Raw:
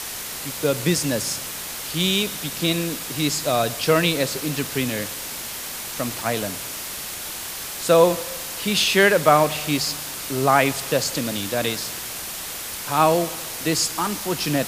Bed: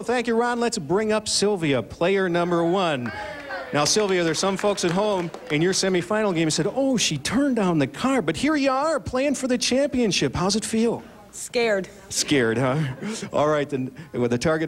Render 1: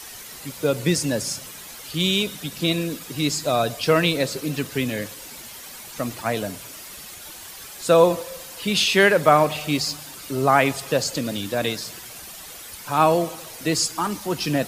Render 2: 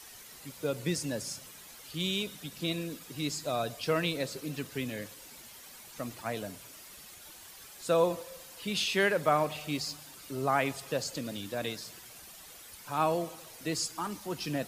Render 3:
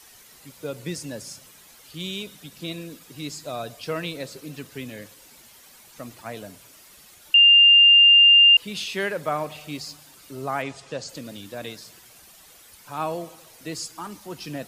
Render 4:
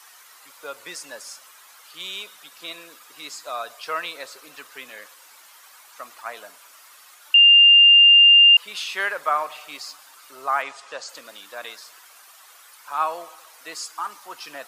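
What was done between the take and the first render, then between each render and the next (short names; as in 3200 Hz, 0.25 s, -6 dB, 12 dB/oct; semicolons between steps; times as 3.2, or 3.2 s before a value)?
denoiser 10 dB, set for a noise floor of -32 dBFS
gain -11 dB
7.34–8.57 bleep 2800 Hz -9.5 dBFS; 10.62–11.09 LPF 8100 Hz 24 dB/oct
HPF 710 Hz 12 dB/oct; bell 1200 Hz +9.5 dB 1.1 oct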